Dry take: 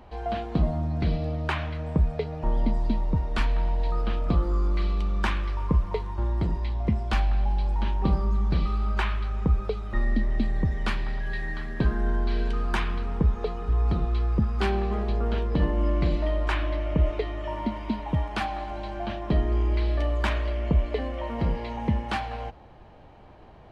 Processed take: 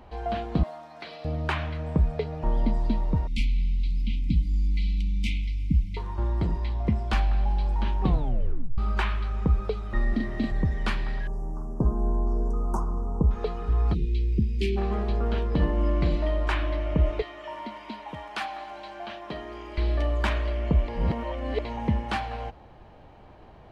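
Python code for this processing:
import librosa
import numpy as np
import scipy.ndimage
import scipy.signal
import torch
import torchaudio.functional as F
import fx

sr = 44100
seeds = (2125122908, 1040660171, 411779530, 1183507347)

y = fx.highpass(x, sr, hz=810.0, slope=12, at=(0.63, 1.25))
y = fx.brickwall_bandstop(y, sr, low_hz=310.0, high_hz=2000.0, at=(3.27, 5.97))
y = fx.doubler(y, sr, ms=40.0, db=-2, at=(10.09, 10.52))
y = fx.cheby2_bandstop(y, sr, low_hz=1700.0, high_hz=4200.0, order=4, stop_db=40, at=(11.27, 13.31))
y = fx.ellip_bandstop(y, sr, low_hz=400.0, high_hz=2300.0, order=3, stop_db=40, at=(13.93, 14.76), fade=0.02)
y = fx.highpass(y, sr, hz=880.0, slope=6, at=(17.22, 19.78))
y = fx.edit(y, sr, fx.tape_stop(start_s=8.03, length_s=0.75),
    fx.reverse_span(start_s=20.88, length_s=0.77), tone=tone)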